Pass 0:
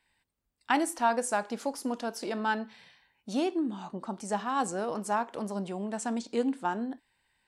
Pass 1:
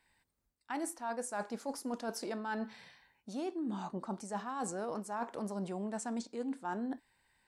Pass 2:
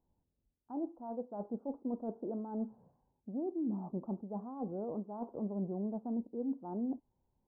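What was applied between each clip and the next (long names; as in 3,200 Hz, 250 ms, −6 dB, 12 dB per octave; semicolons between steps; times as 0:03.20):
parametric band 3,000 Hz −5.5 dB 0.65 octaves; reversed playback; downward compressor 12 to 1, threshold −36 dBFS, peak gain reduction 16.5 dB; reversed playback; level +1.5 dB
Gaussian smoothing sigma 13 samples; level +3 dB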